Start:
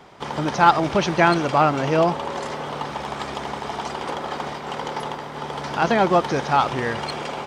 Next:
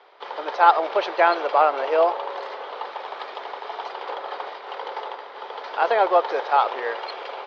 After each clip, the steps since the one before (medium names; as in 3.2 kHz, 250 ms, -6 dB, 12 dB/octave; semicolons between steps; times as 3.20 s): elliptic band-pass 440–4300 Hz, stop band 50 dB; dynamic bell 660 Hz, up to +6 dB, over -30 dBFS, Q 0.73; trim -4 dB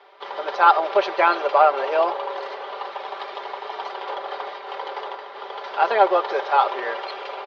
comb 5.1 ms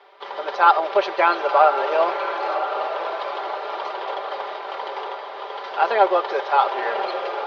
echo that smears into a reverb 1037 ms, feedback 50%, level -8 dB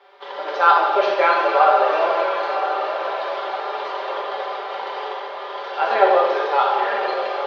gated-style reverb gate 430 ms falling, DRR -3.5 dB; trim -3 dB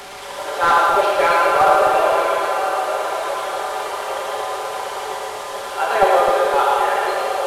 one-bit delta coder 64 kbps, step -29.5 dBFS; two-band feedback delay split 550 Hz, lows 255 ms, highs 111 ms, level -3.5 dB